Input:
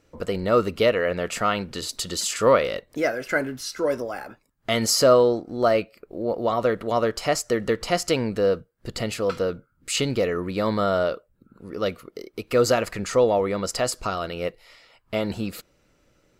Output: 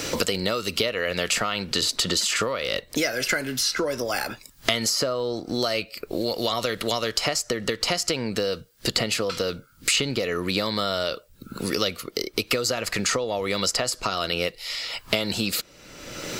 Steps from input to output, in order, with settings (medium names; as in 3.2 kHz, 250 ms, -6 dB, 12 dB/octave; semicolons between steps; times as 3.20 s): treble shelf 12 kHz +11.5 dB; compression 6:1, threshold -24 dBFS, peak gain reduction 12.5 dB; peaking EQ 4.5 kHz +10.5 dB 2.1 oct; three bands compressed up and down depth 100%